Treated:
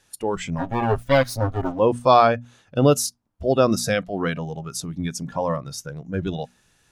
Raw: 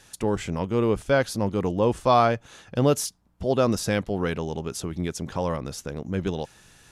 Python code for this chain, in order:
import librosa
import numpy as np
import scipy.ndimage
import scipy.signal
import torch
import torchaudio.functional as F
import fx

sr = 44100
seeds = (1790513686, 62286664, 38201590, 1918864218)

y = fx.lower_of_two(x, sr, delay_ms=7.5, at=(0.58, 1.79))
y = fx.noise_reduce_blind(y, sr, reduce_db=13)
y = fx.hum_notches(y, sr, base_hz=60, count=4)
y = F.gain(torch.from_numpy(y), 4.5).numpy()